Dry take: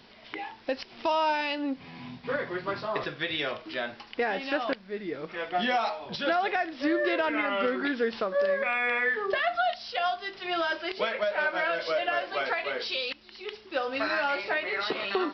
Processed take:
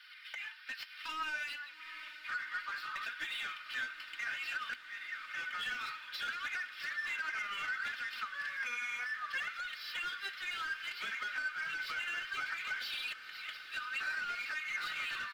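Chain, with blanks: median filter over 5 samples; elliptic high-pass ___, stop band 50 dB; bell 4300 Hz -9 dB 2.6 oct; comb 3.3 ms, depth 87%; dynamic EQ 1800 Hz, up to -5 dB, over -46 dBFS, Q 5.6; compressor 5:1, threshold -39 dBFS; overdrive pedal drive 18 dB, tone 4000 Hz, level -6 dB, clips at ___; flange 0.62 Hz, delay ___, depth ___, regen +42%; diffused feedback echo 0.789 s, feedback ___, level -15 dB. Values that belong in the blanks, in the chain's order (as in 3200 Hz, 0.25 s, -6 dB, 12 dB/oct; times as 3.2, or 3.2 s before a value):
1400 Hz, -26 dBFS, 3.3 ms, 6 ms, 78%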